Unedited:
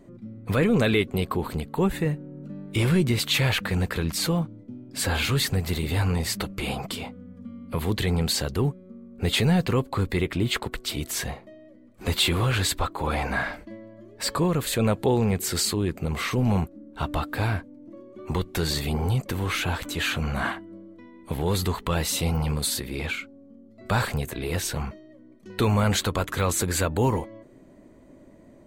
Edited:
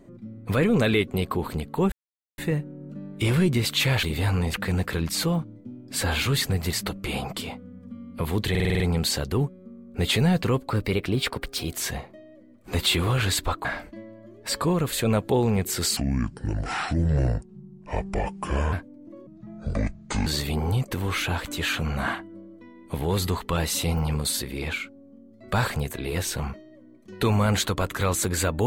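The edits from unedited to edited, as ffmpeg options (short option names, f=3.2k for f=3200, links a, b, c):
-filter_complex "[0:a]asplit=18[a][b][c][d][e][f][g][h][i][j][k][l][m][n][o][p][q][r];[a]atrim=end=1.92,asetpts=PTS-STARTPTS,afade=t=out:st=1.916:d=0.004:c=hsin,apad=pad_dur=0.46[s];[b]atrim=start=1.92:end=3.572,asetpts=PTS-STARTPTS,afade=t=in:d=0.004:c=hsin[t];[c]atrim=start=5.758:end=6.272[u];[d]atrim=start=3.568:end=5.762[v];[e]atrim=start=6.268:end=8.092[w];[f]atrim=start=8.038:end=8.092[x];[g]atrim=start=8.038:end=8.092[y];[h]atrim=start=8.038:end=8.092[z];[i]atrim=start=8.038:end=8.092[aa];[j]atrim=start=8.038:end=8.092[ab];[k]atrim=start=8.038:end=9.944[ac];[l]atrim=start=9.94:end=11.06,asetpts=PTS-STARTPTS,asetrate=48069,aresample=44100[ad];[m]atrim=start=11.056:end=12.982[ae];[n]atrim=start=13.388:end=15.714[af];[o]atrim=start=15.71:end=17.53,asetpts=PTS-STARTPTS,asetrate=29106,aresample=44100,atrim=end_sample=121609,asetpts=PTS-STARTPTS[ag];[p]atrim=start=17.526:end=18.074[ah];[q]atrim=start=18.07:end=18.64,asetpts=PTS-STARTPTS,asetrate=25137,aresample=44100,atrim=end_sample=44100,asetpts=PTS-STARTPTS[ai];[r]atrim=start=18.636[aj];[s][t]concat=n=2:v=0:a=1[ak];[ak][u]acrossfade=d=0.004:c1=hsin:c2=hsin[al];[al][v]acrossfade=d=0.004:c1=hsin:c2=hsin[am];[am][w]acrossfade=d=0.004:c1=hsin:c2=hsin[an];[an][x]acrossfade=d=0.004:c1=hsin:c2=hsin[ao];[ao][y]acrossfade=d=0.004:c1=hsin:c2=hsin[ap];[ap][z]acrossfade=d=0.004:c1=hsin:c2=hsin[aq];[aq][aa]acrossfade=d=0.004:c1=hsin:c2=hsin[ar];[ar][ab]acrossfade=d=0.004:c1=hsin:c2=hsin[as];[as][ac]acrossfade=d=0.004:c1=hsin:c2=hsin[at];[at][ad]acrossfade=d=0.004:c1=hsin:c2=hsin[au];[au][ae]acrossfade=d=0.004:c1=hsin:c2=hsin[av];[av][af]acrossfade=d=0.004:c1=hsin:c2=hsin[aw];[aw][ag]acrossfade=d=0.004:c1=hsin:c2=hsin[ax];[ax][ah]acrossfade=d=0.004:c1=hsin:c2=hsin[ay];[ay][ai]acrossfade=d=0.004:c1=hsin:c2=hsin[az];[az][aj]acrossfade=d=0.004:c1=hsin:c2=hsin"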